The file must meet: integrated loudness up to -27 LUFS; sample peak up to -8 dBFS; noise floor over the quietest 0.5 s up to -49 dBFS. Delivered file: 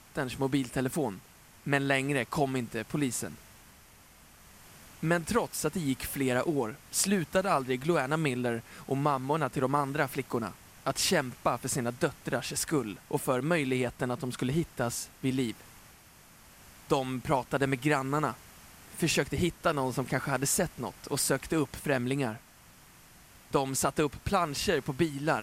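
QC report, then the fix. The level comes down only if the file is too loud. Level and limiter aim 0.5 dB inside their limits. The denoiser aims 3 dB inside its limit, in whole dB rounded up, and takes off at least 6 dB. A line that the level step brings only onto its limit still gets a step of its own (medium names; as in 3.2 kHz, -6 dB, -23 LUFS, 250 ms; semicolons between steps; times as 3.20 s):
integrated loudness -30.5 LUFS: pass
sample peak -13.0 dBFS: pass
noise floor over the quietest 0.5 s -56 dBFS: pass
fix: none needed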